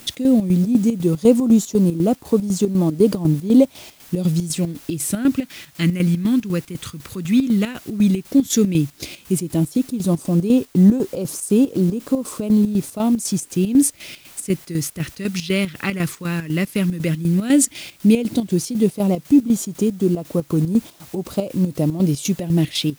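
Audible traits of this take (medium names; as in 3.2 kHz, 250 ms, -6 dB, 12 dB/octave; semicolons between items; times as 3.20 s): phasing stages 2, 0.11 Hz, lowest notch 690–2000 Hz; a quantiser's noise floor 8-bit, dither triangular; chopped level 4 Hz, depth 65%, duty 60%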